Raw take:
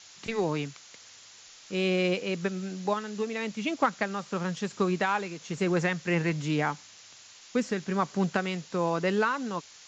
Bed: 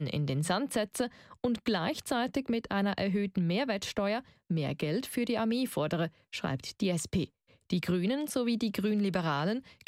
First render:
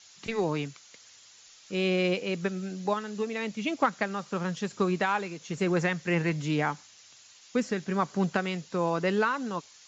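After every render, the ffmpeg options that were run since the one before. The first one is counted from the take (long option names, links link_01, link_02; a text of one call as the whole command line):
ffmpeg -i in.wav -af "afftdn=noise_reduction=6:noise_floor=-52" out.wav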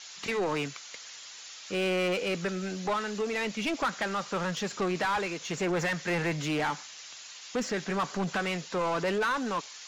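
ffmpeg -i in.wav -filter_complex "[0:a]asoftclip=type=tanh:threshold=-23dB,asplit=2[link_01][link_02];[link_02]highpass=frequency=720:poles=1,volume=17dB,asoftclip=type=tanh:threshold=-23dB[link_03];[link_01][link_03]amix=inputs=2:normalize=0,lowpass=frequency=4500:poles=1,volume=-6dB" out.wav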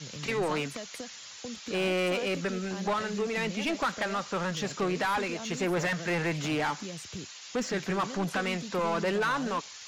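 ffmpeg -i in.wav -i bed.wav -filter_complex "[1:a]volume=-10.5dB[link_01];[0:a][link_01]amix=inputs=2:normalize=0" out.wav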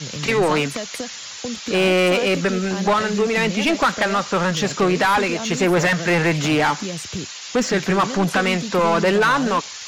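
ffmpeg -i in.wav -af "volume=11.5dB" out.wav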